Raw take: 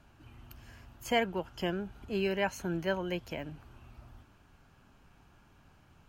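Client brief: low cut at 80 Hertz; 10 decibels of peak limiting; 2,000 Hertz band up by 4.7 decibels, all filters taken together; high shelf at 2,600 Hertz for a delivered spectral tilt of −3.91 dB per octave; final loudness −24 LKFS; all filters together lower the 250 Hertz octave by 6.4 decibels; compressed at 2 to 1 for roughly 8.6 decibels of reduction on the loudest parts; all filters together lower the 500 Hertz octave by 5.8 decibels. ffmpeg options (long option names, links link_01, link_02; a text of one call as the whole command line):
ffmpeg -i in.wav -af "highpass=80,equalizer=frequency=250:width_type=o:gain=-8.5,equalizer=frequency=500:width_type=o:gain=-5.5,equalizer=frequency=2000:width_type=o:gain=3.5,highshelf=frequency=2600:gain=6,acompressor=threshold=-38dB:ratio=2,volume=20dB,alimiter=limit=-12dB:level=0:latency=1" out.wav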